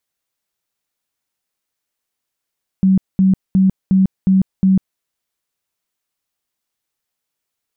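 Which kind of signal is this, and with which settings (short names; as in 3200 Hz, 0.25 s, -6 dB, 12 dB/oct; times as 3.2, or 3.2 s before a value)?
tone bursts 190 Hz, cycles 28, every 0.36 s, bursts 6, -8.5 dBFS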